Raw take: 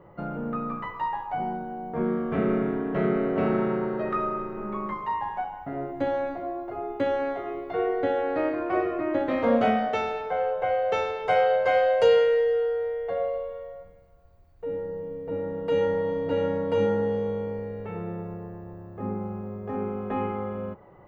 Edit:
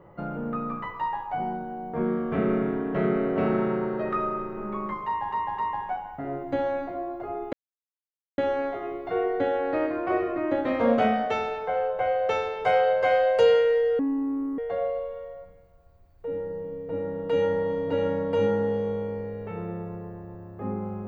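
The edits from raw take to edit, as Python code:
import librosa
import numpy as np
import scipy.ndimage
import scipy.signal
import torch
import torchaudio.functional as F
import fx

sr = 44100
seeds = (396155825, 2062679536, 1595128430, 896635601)

y = fx.edit(x, sr, fx.repeat(start_s=5.06, length_s=0.26, count=3),
    fx.insert_silence(at_s=7.01, length_s=0.85),
    fx.speed_span(start_s=12.62, length_s=0.35, speed=0.59), tone=tone)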